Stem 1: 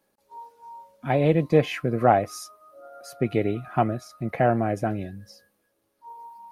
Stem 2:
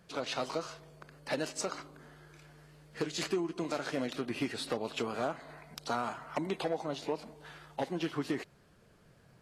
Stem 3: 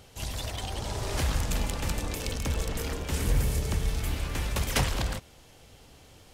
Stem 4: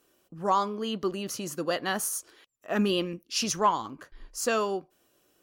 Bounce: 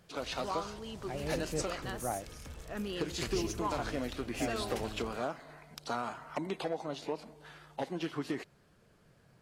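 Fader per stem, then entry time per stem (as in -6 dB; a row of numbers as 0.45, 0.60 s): -18.5, -2.0, -18.0, -13.0 dB; 0.00, 0.00, 0.00, 0.00 s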